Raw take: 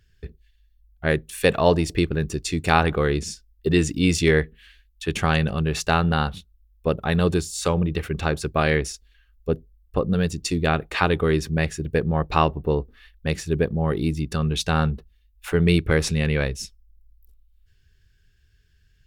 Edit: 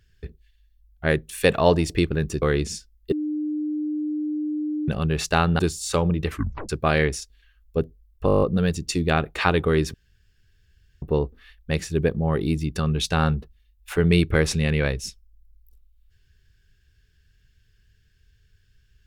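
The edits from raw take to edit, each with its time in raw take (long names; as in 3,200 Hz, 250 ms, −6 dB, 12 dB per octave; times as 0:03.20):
0:02.42–0:02.98: remove
0:03.68–0:05.44: beep over 302 Hz −23.5 dBFS
0:06.15–0:07.31: remove
0:08.01: tape stop 0.40 s
0:09.98: stutter 0.02 s, 9 plays
0:11.50–0:12.58: fill with room tone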